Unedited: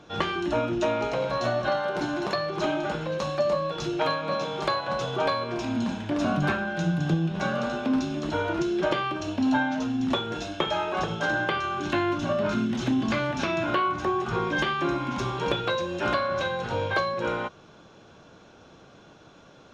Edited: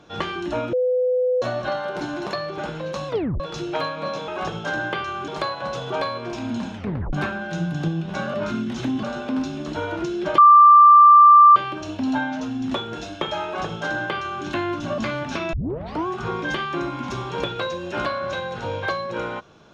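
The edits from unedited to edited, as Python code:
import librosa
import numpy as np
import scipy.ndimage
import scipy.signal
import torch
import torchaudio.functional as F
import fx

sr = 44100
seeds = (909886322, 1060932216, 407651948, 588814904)

y = fx.edit(x, sr, fx.bleep(start_s=0.73, length_s=0.69, hz=503.0, db=-17.0),
    fx.cut(start_s=2.58, length_s=0.26),
    fx.tape_stop(start_s=3.34, length_s=0.32),
    fx.tape_stop(start_s=6.02, length_s=0.37),
    fx.insert_tone(at_s=8.95, length_s=1.18, hz=1180.0, db=-6.5),
    fx.duplicate(start_s=10.84, length_s=1.0, to_s=4.54),
    fx.move(start_s=12.37, length_s=0.69, to_s=7.6),
    fx.tape_start(start_s=13.61, length_s=0.54), tone=tone)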